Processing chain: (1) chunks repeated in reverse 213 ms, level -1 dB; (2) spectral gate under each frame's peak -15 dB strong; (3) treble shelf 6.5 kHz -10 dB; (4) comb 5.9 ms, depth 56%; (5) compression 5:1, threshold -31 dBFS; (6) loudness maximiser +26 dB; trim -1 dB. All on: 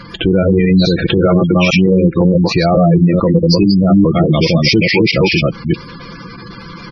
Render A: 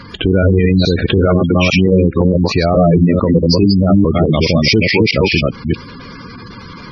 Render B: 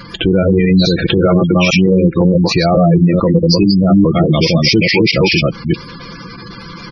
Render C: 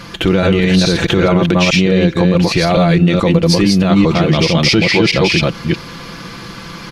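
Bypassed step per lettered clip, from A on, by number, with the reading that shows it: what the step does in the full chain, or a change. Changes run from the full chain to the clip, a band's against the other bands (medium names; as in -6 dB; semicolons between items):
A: 4, momentary loudness spread change -9 LU; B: 3, 4 kHz band +2.0 dB; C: 2, 4 kHz band +3.0 dB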